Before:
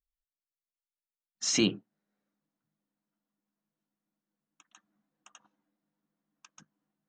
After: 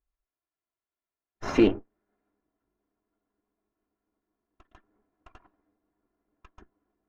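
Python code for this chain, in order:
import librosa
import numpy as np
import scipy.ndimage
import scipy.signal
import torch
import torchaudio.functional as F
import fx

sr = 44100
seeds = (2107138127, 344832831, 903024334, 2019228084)

y = fx.lower_of_two(x, sr, delay_ms=2.9)
y = scipy.signal.sosfilt(scipy.signal.butter(2, 1500.0, 'lowpass', fs=sr, output='sos'), y)
y = y * librosa.db_to_amplitude(9.0)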